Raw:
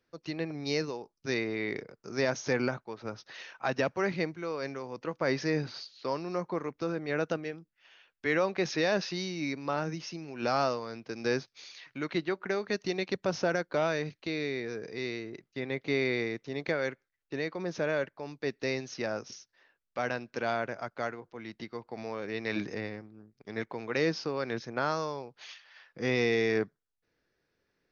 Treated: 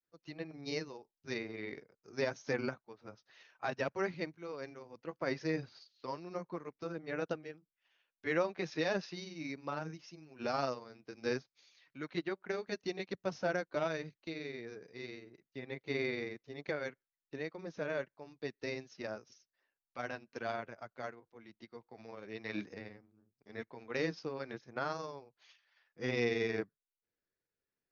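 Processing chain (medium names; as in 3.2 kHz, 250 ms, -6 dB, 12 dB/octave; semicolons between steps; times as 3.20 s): granulator 100 ms, grains 22 per s, spray 10 ms, pitch spread up and down by 0 st; upward expansion 1.5:1, over -50 dBFS; trim -2.5 dB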